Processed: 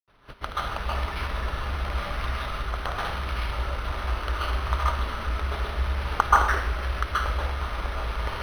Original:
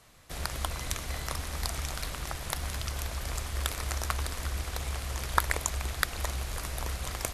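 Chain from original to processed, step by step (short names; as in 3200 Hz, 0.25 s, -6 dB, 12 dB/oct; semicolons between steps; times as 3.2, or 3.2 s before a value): LPF 6900 Hz 24 dB/oct; bell 1500 Hz +8 dB 0.31 oct; varispeed -13%; grains, pitch spread up and down by 0 st; plate-style reverb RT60 0.64 s, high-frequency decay 1×, pre-delay 0.12 s, DRR -6.5 dB; decimation joined by straight lines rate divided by 6×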